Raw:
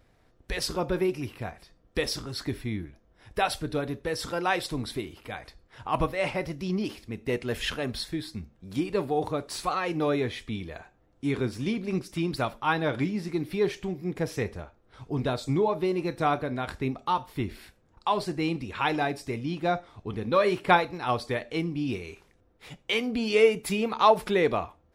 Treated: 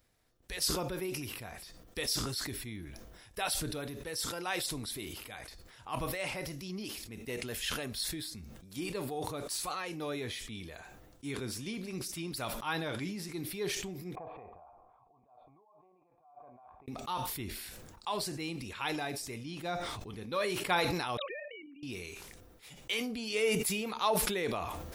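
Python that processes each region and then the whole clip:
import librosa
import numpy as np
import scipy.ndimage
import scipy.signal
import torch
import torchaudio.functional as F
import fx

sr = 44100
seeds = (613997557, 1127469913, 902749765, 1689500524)

y = fx.chain(x, sr, fx.over_compress(threshold_db=-38.0, ratio=-1.0),
    fx.formant_cascade(vowel='a'), at=(14.15, 16.88))
y = fx.chain(y, sr, fx.sine_speech(),
    fx.highpass(hz=730.0, slope=6),
    fx.level_steps(step_db=10), at=(21.17, 21.83))
y = scipy.signal.lfilter([1.0, -0.8], [1.0], y)
y = fx.sustainer(y, sr, db_per_s=30.0)
y = F.gain(torch.from_numpy(y), 1.5).numpy()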